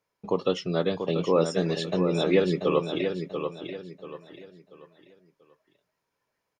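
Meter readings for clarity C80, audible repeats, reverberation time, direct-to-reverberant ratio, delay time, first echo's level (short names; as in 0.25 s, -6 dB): none, 3, none, none, 0.687 s, -7.0 dB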